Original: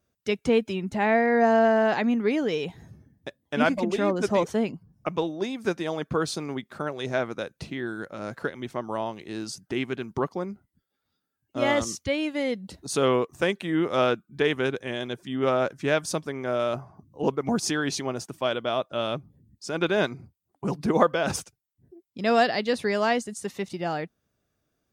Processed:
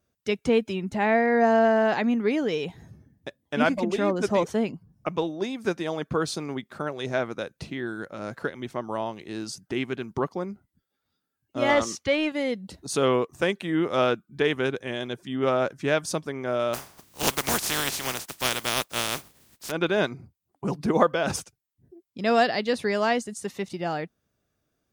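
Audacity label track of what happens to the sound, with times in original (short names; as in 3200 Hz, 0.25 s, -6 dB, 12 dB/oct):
11.690000	12.320000	overdrive pedal drive 14 dB, tone 2100 Hz, clips at -10 dBFS
16.730000	19.700000	spectral contrast lowered exponent 0.25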